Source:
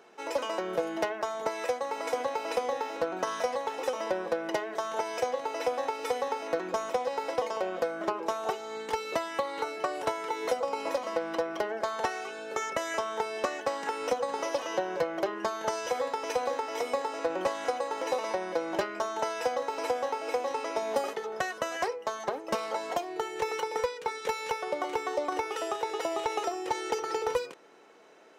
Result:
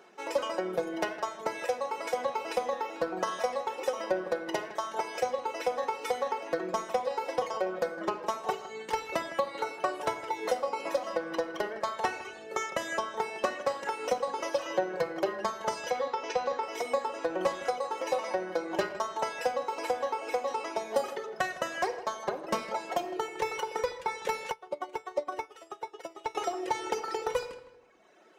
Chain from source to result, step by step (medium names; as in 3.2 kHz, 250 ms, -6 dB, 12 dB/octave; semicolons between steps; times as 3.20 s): reverb removal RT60 1.4 s; 15.90–16.63 s: low-pass 6.2 kHz 24 dB/octave; filtered feedback delay 159 ms, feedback 32%, low-pass 3.9 kHz, level -15 dB; reverberation RT60 0.80 s, pre-delay 5 ms, DRR 7 dB; 24.51–26.35 s: upward expansion 2.5:1, over -40 dBFS